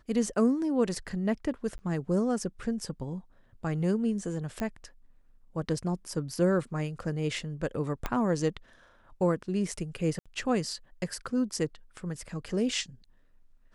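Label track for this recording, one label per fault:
1.780000	1.790000	dropout 10 ms
4.600000	4.600000	pop -20 dBFS
8.060000	8.060000	pop -15 dBFS
10.190000	10.260000	dropout 66 ms

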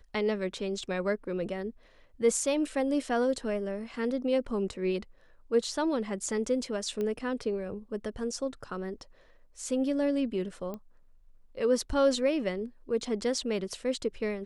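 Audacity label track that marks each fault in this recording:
7.010000	7.010000	pop -22 dBFS
10.740000	10.740000	pop -26 dBFS

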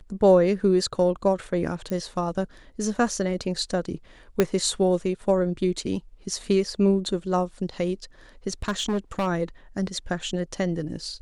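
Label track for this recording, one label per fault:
1.900000	1.900000	pop -19 dBFS
4.400000	4.400000	pop -6 dBFS
8.620000	9.280000	clipped -21 dBFS

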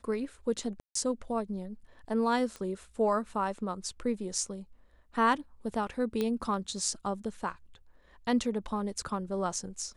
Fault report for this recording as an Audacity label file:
0.800000	0.950000	dropout 154 ms
2.560000	2.560000	pop -27 dBFS
6.210000	6.210000	pop -18 dBFS

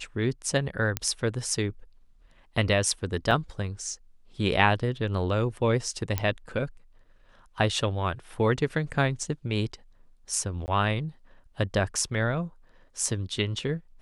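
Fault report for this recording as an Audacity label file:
0.970000	0.970000	pop -10 dBFS
3.310000	3.320000	dropout 5.6 ms
6.180000	6.180000	pop -11 dBFS
10.660000	10.680000	dropout 19 ms

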